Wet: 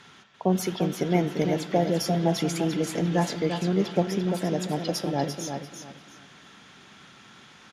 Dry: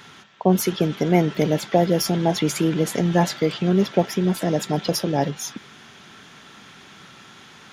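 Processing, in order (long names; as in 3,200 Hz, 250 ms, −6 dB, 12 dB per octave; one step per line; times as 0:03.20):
low-pass filter 11,000 Hz 12 dB per octave
repeating echo 344 ms, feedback 23%, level −7 dB
on a send at −15 dB: convolution reverb RT60 1.6 s, pre-delay 4 ms
on the sum: level −6 dB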